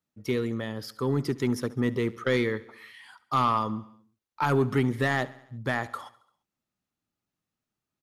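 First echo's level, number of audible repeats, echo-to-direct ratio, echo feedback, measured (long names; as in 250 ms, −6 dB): −20.0 dB, 4, −18.0 dB, 60%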